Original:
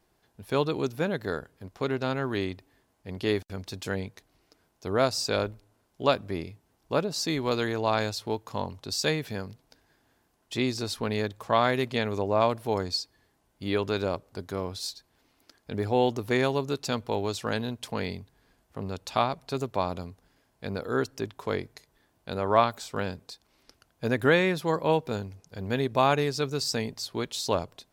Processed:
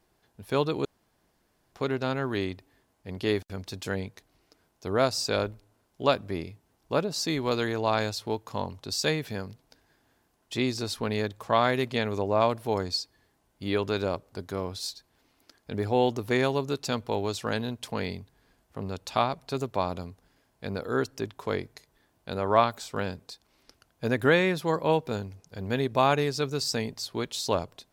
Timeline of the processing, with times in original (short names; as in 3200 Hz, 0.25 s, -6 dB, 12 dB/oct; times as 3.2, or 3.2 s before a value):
0.85–1.72 room tone